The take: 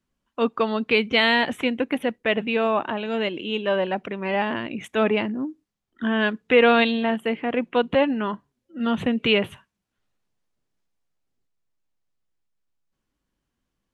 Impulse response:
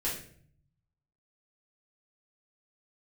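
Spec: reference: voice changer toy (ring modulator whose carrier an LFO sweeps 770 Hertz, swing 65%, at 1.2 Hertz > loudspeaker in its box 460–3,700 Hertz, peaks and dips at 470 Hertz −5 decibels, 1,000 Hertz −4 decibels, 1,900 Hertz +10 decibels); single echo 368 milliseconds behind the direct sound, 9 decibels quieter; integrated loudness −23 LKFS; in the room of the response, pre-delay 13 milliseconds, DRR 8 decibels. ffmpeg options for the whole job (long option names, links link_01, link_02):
-filter_complex "[0:a]aecho=1:1:368:0.355,asplit=2[link_01][link_02];[1:a]atrim=start_sample=2205,adelay=13[link_03];[link_02][link_03]afir=irnorm=-1:irlink=0,volume=-13dB[link_04];[link_01][link_04]amix=inputs=2:normalize=0,aeval=exprs='val(0)*sin(2*PI*770*n/s+770*0.65/1.2*sin(2*PI*1.2*n/s))':channel_layout=same,highpass=460,equalizer=frequency=470:width_type=q:width=4:gain=-5,equalizer=frequency=1000:width_type=q:width=4:gain=-4,equalizer=frequency=1900:width_type=q:width=4:gain=10,lowpass=frequency=3700:width=0.5412,lowpass=frequency=3700:width=1.3066,volume=-0.5dB"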